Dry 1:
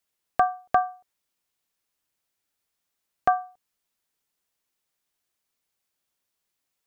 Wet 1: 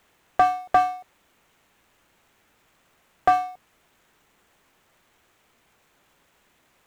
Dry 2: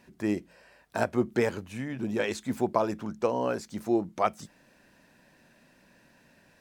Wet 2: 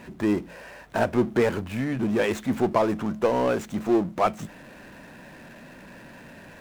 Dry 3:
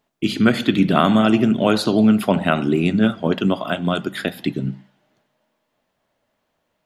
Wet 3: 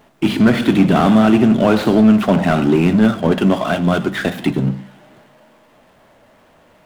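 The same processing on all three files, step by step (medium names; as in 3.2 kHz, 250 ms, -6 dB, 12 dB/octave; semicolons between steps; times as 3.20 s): median filter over 9 samples; power-law waveshaper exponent 0.7; slew-rate limiter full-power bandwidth 260 Hz; trim +1 dB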